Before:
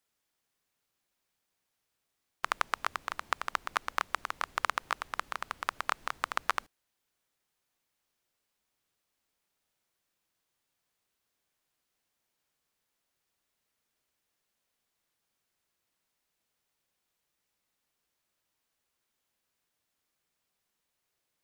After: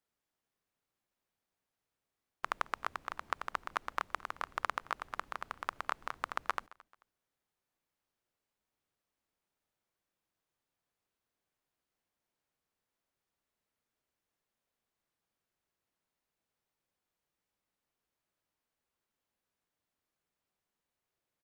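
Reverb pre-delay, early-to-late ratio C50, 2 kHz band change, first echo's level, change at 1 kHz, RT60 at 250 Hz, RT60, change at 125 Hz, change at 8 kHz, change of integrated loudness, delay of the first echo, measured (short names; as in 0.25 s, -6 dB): none, none, -5.5 dB, -22.5 dB, -4.0 dB, none, none, -2.0 dB, -10.0 dB, -5.0 dB, 0.219 s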